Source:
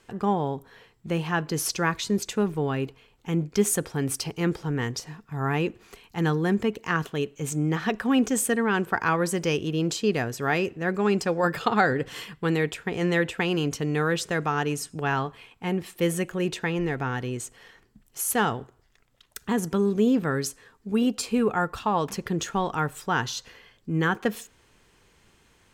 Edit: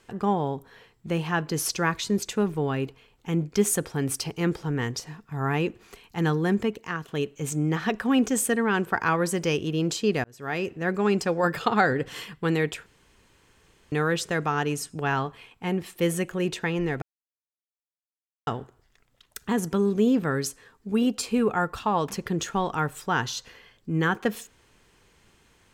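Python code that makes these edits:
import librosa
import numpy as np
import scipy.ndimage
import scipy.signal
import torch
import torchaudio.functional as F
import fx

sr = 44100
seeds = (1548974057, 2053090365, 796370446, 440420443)

y = fx.edit(x, sr, fx.fade_out_to(start_s=6.6, length_s=0.48, floor_db=-10.5),
    fx.fade_in_span(start_s=10.24, length_s=0.53),
    fx.room_tone_fill(start_s=12.86, length_s=1.06),
    fx.silence(start_s=17.02, length_s=1.45), tone=tone)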